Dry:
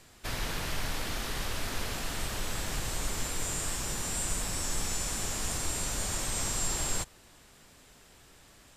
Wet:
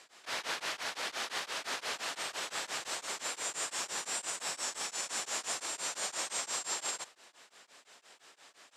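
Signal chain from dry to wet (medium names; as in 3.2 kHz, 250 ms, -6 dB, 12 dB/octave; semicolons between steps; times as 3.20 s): peak limiter -24 dBFS, peak gain reduction 6 dB; band-pass 560–7500 Hz; tremolo of two beating tones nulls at 5.8 Hz; trim +4 dB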